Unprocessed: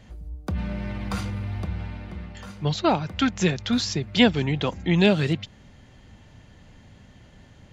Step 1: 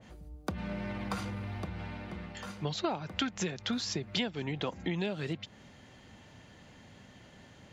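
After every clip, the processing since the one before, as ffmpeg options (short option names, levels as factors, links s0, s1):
-af "acompressor=threshold=0.0447:ratio=16,highpass=f=220:p=1,adynamicequalizer=threshold=0.00398:dfrequency=1900:dqfactor=0.7:tfrequency=1900:tqfactor=0.7:attack=5:release=100:ratio=0.375:range=2:mode=cutabove:tftype=highshelf"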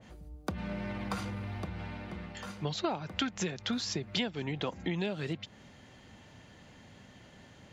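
-af anull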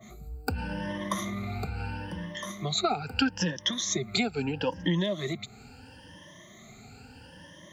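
-filter_complex "[0:a]afftfilt=real='re*pow(10,22/40*sin(2*PI*(1.2*log(max(b,1)*sr/1024/100)/log(2)-(0.76)*(pts-256)/sr)))':imag='im*pow(10,22/40*sin(2*PI*(1.2*log(max(b,1)*sr/1024/100)/log(2)-(0.76)*(pts-256)/sr)))':win_size=1024:overlap=0.75,acrossover=split=210|3100[s0][s1][s2];[s2]crystalizer=i=1:c=0[s3];[s0][s1][s3]amix=inputs=3:normalize=0"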